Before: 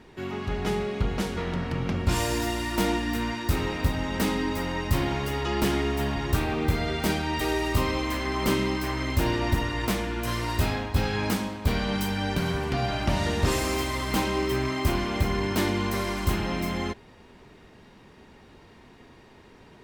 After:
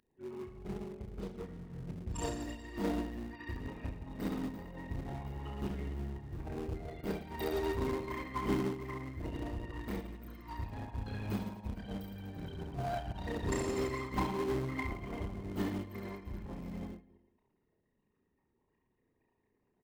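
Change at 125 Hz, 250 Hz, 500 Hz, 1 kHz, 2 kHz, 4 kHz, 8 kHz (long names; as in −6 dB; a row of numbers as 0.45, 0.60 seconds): −12.5, −11.0, −10.5, −13.0, −16.0, −19.5, −15.5 decibels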